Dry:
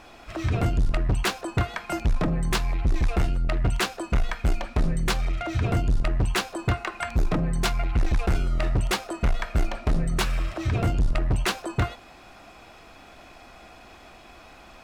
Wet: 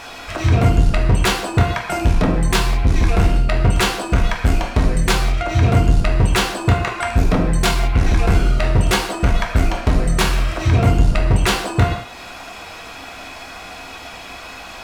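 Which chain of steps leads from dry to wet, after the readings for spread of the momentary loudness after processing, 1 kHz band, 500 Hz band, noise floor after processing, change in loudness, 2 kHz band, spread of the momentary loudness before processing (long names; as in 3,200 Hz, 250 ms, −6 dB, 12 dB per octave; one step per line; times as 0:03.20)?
17 LU, +9.5 dB, +9.5 dB, −35 dBFS, +9.0 dB, +9.0 dB, 4 LU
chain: reverb whose tail is shaped and stops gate 220 ms falling, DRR 0 dB
one half of a high-frequency compander encoder only
level +6 dB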